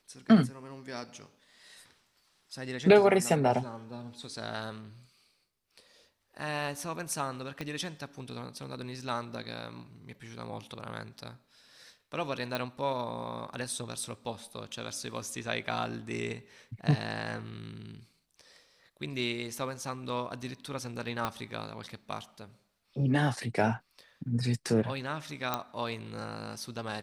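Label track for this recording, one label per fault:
7.610000	7.610000	click −22 dBFS
12.550000	12.550000	click
21.250000	21.250000	click −16 dBFS
25.540000	25.540000	click −14 dBFS

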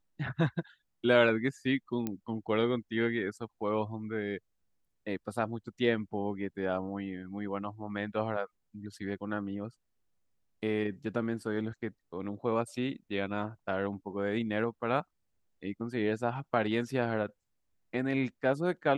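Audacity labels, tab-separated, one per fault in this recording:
2.070000	2.070000	click −20 dBFS

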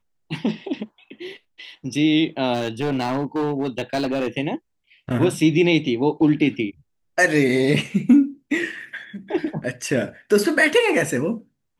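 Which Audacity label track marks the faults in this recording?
2.530000	4.280000	clipping −18 dBFS

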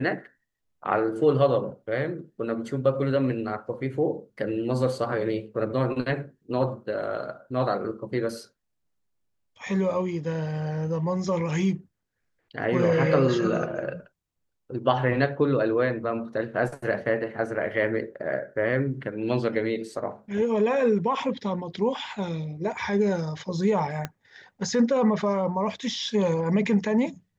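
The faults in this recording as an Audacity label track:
24.050000	24.050000	click −15 dBFS

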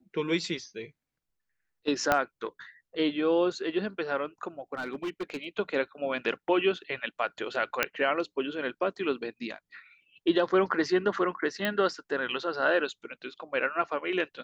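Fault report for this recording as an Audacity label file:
2.120000	2.120000	click −9 dBFS
4.740000	5.460000	clipping −29 dBFS
7.830000	7.830000	click −8 dBFS
11.650000	11.650000	click −15 dBFS

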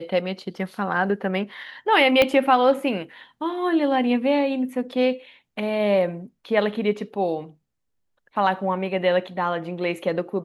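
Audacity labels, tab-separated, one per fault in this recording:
2.220000	2.220000	click −5 dBFS

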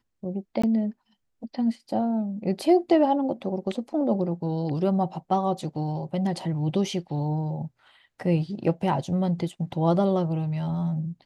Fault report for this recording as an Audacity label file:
0.620000	0.640000	drop-out 15 ms

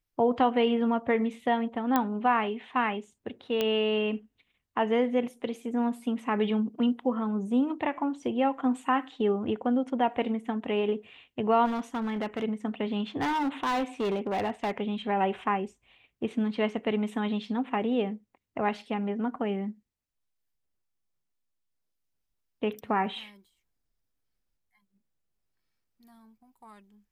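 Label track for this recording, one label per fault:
1.960000	1.960000	click −11 dBFS
3.610000	3.610000	click −14 dBFS
11.650000	12.440000	clipping −27 dBFS
13.210000	14.780000	clipping −25 dBFS

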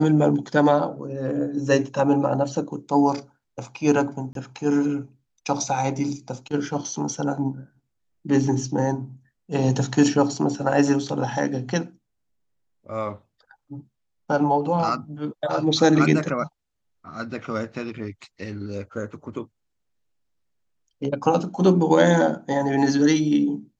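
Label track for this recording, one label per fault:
4.330000	4.350000	drop-out 22 ms

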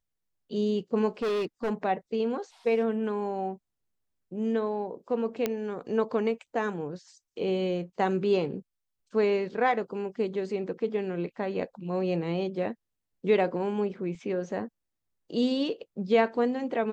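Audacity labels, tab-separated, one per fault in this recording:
1.220000	1.710000	clipping −25.5 dBFS
5.460000	5.460000	click −13 dBFS
14.150000	14.150000	drop-out 2.2 ms

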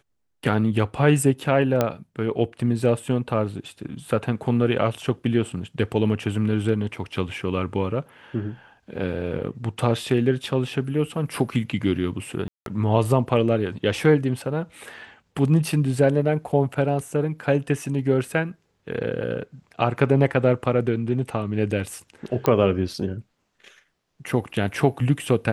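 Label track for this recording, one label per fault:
1.810000	1.810000	click −7 dBFS
12.480000	12.660000	drop-out 182 ms
22.460000	22.460000	click −8 dBFS

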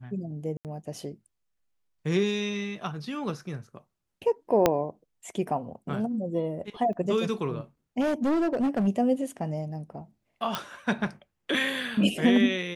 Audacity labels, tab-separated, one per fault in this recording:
0.570000	0.650000	drop-out 78 ms
4.660000	4.660000	click −6 dBFS
6.930000	6.930000	drop-out
8.000000	8.880000	clipping −22 dBFS
10.550000	10.550000	click −13 dBFS

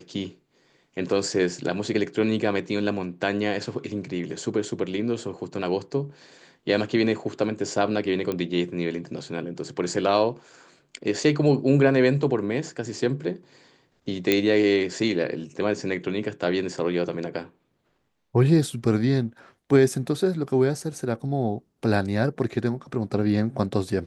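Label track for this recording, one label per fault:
8.320000	8.320000	click −15 dBFS
14.320000	14.320000	click −6 dBFS

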